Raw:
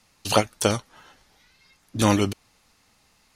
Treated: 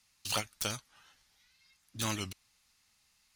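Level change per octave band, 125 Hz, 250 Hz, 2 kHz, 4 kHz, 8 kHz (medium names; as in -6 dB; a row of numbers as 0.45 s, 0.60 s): -15.0 dB, -19.0 dB, -9.5 dB, -7.5 dB, -7.5 dB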